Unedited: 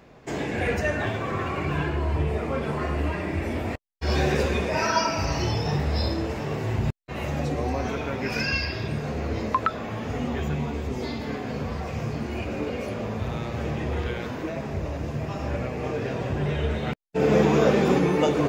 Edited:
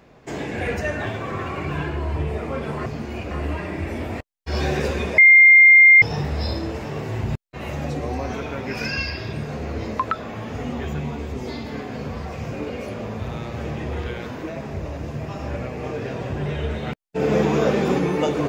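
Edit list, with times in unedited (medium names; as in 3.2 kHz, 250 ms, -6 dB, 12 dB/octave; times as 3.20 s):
4.73–5.57 s: bleep 2.11 kHz -6.5 dBFS
12.07–12.52 s: move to 2.86 s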